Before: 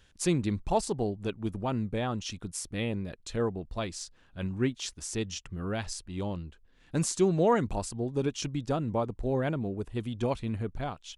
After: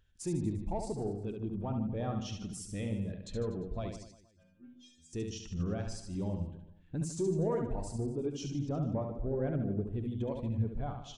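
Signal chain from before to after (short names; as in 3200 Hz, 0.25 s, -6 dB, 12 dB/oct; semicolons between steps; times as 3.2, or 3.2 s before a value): in parallel at +1.5 dB: limiter -25.5 dBFS, peak gain reduction 12 dB; on the sum: compressor 2:1, threshold -31 dBFS, peak gain reduction 8 dB; soft clip -24 dBFS, distortion -18 dB; 3.96–5.13 metallic resonator 79 Hz, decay 0.81 s, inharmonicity 0.008; on a send: reverse bouncing-ball echo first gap 70 ms, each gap 1.15×, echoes 5; on the sum: spectral expander 1.5:1; gain -2.5 dB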